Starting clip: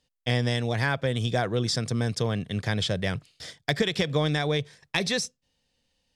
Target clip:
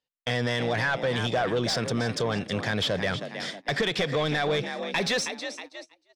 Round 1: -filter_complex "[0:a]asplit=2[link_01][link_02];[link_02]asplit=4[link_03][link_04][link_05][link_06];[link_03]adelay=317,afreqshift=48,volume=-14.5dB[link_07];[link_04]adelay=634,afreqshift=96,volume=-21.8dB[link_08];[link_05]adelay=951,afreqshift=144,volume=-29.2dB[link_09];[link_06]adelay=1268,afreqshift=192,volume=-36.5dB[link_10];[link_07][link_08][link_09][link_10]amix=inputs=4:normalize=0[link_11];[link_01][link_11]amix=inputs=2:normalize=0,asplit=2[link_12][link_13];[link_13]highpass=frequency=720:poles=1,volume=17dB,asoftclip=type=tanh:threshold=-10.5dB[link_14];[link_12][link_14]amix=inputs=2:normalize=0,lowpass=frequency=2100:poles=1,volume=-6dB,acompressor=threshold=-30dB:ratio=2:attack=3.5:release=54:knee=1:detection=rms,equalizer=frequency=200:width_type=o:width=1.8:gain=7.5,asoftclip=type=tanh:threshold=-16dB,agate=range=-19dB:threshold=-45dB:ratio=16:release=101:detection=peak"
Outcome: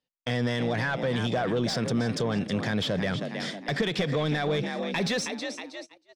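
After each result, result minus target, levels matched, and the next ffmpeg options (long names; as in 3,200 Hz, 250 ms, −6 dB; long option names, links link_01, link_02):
250 Hz band +4.0 dB; downward compressor: peak gain reduction +4 dB
-filter_complex "[0:a]asplit=2[link_01][link_02];[link_02]asplit=4[link_03][link_04][link_05][link_06];[link_03]adelay=317,afreqshift=48,volume=-14.5dB[link_07];[link_04]adelay=634,afreqshift=96,volume=-21.8dB[link_08];[link_05]adelay=951,afreqshift=144,volume=-29.2dB[link_09];[link_06]adelay=1268,afreqshift=192,volume=-36.5dB[link_10];[link_07][link_08][link_09][link_10]amix=inputs=4:normalize=0[link_11];[link_01][link_11]amix=inputs=2:normalize=0,asplit=2[link_12][link_13];[link_13]highpass=frequency=720:poles=1,volume=17dB,asoftclip=type=tanh:threshold=-10.5dB[link_14];[link_12][link_14]amix=inputs=2:normalize=0,lowpass=frequency=2100:poles=1,volume=-6dB,acompressor=threshold=-30dB:ratio=2:attack=3.5:release=54:knee=1:detection=rms,asoftclip=type=tanh:threshold=-16dB,agate=range=-19dB:threshold=-45dB:ratio=16:release=101:detection=peak"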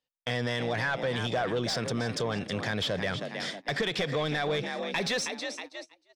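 downward compressor: peak gain reduction +4 dB
-filter_complex "[0:a]asplit=2[link_01][link_02];[link_02]asplit=4[link_03][link_04][link_05][link_06];[link_03]adelay=317,afreqshift=48,volume=-14.5dB[link_07];[link_04]adelay=634,afreqshift=96,volume=-21.8dB[link_08];[link_05]adelay=951,afreqshift=144,volume=-29.2dB[link_09];[link_06]adelay=1268,afreqshift=192,volume=-36.5dB[link_10];[link_07][link_08][link_09][link_10]amix=inputs=4:normalize=0[link_11];[link_01][link_11]amix=inputs=2:normalize=0,asplit=2[link_12][link_13];[link_13]highpass=frequency=720:poles=1,volume=17dB,asoftclip=type=tanh:threshold=-10.5dB[link_14];[link_12][link_14]amix=inputs=2:normalize=0,lowpass=frequency=2100:poles=1,volume=-6dB,acompressor=threshold=-22dB:ratio=2:attack=3.5:release=54:knee=1:detection=rms,asoftclip=type=tanh:threshold=-16dB,agate=range=-19dB:threshold=-45dB:ratio=16:release=101:detection=peak"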